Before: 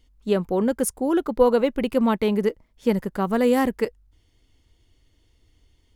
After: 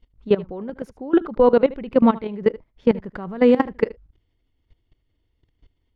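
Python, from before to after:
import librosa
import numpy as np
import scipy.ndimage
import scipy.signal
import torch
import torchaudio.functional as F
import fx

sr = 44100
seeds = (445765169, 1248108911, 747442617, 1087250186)

y = fx.level_steps(x, sr, step_db=19)
y = fx.air_absorb(y, sr, metres=260.0)
y = y + 10.0 ** (-19.5 / 20.0) * np.pad(y, (int(77 * sr / 1000.0), 0))[:len(y)]
y = F.gain(torch.from_numpy(y), 7.5).numpy()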